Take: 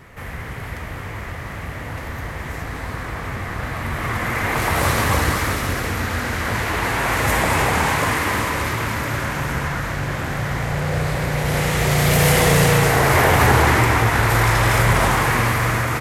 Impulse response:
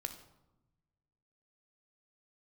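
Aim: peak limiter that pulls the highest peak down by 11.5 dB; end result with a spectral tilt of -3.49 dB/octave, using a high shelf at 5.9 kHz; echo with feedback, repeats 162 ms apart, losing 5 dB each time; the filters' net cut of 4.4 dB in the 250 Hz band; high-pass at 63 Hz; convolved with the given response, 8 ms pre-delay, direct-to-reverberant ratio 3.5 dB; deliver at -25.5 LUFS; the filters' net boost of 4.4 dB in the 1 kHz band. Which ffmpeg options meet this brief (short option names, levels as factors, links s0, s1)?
-filter_complex "[0:a]highpass=63,equalizer=f=250:t=o:g=-8,equalizer=f=1000:t=o:g=5.5,highshelf=f=5900:g=8.5,alimiter=limit=0.266:level=0:latency=1,aecho=1:1:162|324|486|648|810|972|1134:0.562|0.315|0.176|0.0988|0.0553|0.031|0.0173,asplit=2[s0][s1];[1:a]atrim=start_sample=2205,adelay=8[s2];[s1][s2]afir=irnorm=-1:irlink=0,volume=0.794[s3];[s0][s3]amix=inputs=2:normalize=0,volume=0.422"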